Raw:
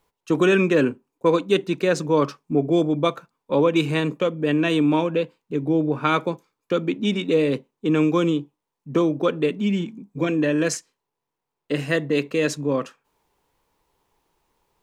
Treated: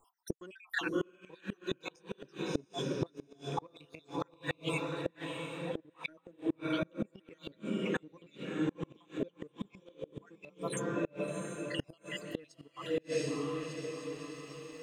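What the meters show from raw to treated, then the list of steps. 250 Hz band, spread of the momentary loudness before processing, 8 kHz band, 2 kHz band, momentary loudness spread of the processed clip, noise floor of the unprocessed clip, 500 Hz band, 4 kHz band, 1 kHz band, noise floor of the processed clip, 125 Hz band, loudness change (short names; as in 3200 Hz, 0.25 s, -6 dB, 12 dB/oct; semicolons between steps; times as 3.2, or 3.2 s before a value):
-16.5 dB, 8 LU, -12.0 dB, -13.0 dB, 12 LU, -83 dBFS, -16.5 dB, -12.5 dB, -15.5 dB, -70 dBFS, -15.5 dB, -17.0 dB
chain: random spectral dropouts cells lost 75%; flange 0.17 Hz, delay 2.7 ms, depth 5.9 ms, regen -47%; on a send: diffused feedback echo 0.689 s, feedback 46%, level -6 dB; on the sum: flipped gate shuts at -25 dBFS, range -31 dB; in parallel at -9 dB: crossover distortion -58.5 dBFS; on the sum: mismatched tape noise reduction encoder only; gain +1 dB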